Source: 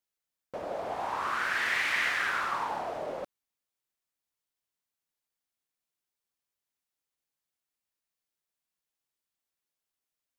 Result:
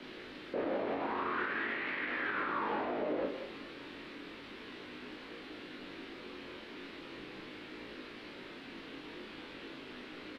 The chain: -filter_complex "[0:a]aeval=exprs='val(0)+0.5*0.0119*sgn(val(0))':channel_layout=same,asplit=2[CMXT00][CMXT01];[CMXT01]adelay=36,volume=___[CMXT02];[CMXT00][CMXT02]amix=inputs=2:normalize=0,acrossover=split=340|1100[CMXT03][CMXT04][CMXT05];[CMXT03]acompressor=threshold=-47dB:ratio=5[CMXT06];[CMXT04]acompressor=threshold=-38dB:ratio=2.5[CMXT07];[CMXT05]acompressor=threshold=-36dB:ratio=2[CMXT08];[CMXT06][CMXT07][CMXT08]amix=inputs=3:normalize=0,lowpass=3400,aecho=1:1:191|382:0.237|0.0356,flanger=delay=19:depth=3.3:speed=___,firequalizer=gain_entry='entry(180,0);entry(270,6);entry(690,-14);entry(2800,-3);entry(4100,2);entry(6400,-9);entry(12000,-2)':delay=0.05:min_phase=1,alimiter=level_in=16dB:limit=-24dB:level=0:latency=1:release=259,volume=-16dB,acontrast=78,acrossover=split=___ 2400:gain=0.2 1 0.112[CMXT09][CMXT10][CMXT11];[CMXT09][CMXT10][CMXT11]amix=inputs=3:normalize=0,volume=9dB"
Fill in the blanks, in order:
-4dB, 0.38, 240